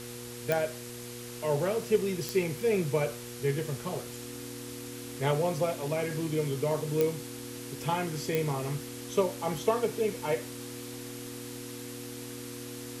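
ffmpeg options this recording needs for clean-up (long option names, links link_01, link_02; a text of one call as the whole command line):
ffmpeg -i in.wav -af "adeclick=threshold=4,bandreject=frequency=120.5:width_type=h:width=4,bandreject=frequency=241:width_type=h:width=4,bandreject=frequency=361.5:width_type=h:width=4,bandreject=frequency=482:width_type=h:width=4,bandreject=frequency=280:width=30,afftdn=noise_reduction=30:noise_floor=-42" out.wav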